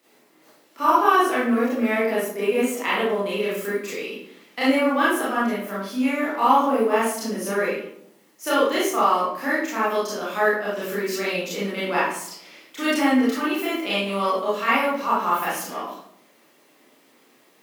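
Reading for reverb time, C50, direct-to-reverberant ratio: 0.70 s, -0.5 dB, -9.5 dB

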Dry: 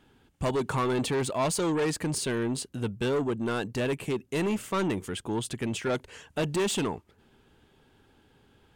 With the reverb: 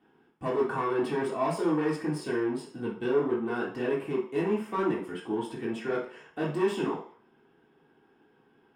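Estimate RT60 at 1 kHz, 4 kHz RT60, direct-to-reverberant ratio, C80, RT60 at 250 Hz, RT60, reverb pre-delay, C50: 0.55 s, 0.55 s, -6.5 dB, 10.5 dB, 0.45 s, 0.50 s, 3 ms, 5.5 dB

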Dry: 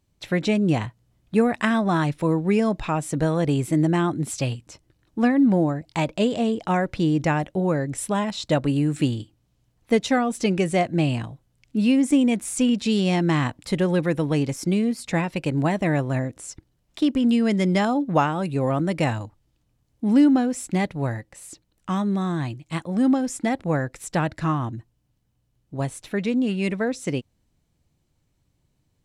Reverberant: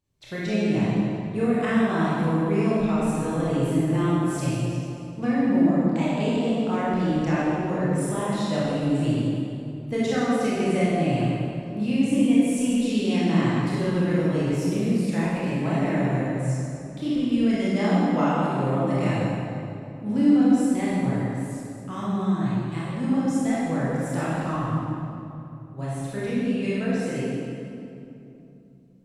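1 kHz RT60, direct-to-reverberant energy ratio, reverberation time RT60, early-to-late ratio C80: 2.7 s, -9.0 dB, 2.9 s, -2.0 dB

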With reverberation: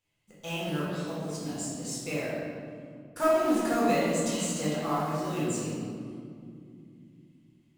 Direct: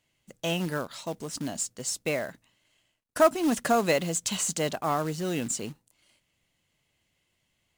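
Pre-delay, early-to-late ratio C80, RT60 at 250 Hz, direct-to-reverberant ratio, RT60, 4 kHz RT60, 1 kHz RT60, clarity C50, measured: 4 ms, 0.0 dB, 4.2 s, -8.0 dB, 2.5 s, 1.3 s, 2.1 s, -2.0 dB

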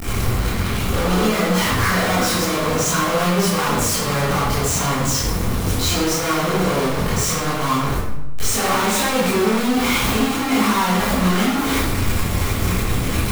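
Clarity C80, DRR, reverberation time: 3.5 dB, -10.0 dB, 0.90 s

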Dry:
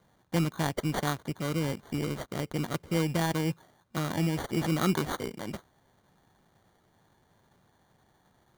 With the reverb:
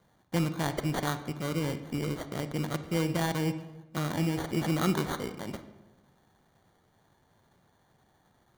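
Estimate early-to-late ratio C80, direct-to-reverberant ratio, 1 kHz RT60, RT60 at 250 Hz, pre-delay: 13.5 dB, 10.0 dB, 1.0 s, 1.4 s, 29 ms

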